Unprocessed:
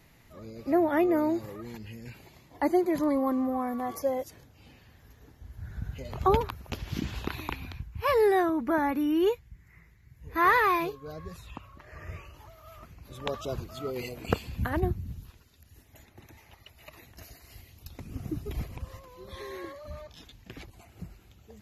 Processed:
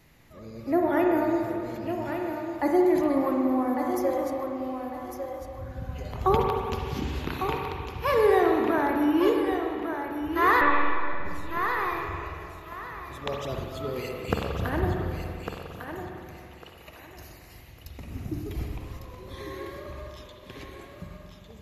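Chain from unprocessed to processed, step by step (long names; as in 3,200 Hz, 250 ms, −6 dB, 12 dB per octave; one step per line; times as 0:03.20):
feedback echo with a high-pass in the loop 1,152 ms, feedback 26%, high-pass 290 Hz, level −6.5 dB
0:10.61–0:11.25: one-pitch LPC vocoder at 8 kHz 290 Hz
spring reverb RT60 2.4 s, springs 44/58 ms, chirp 35 ms, DRR 1 dB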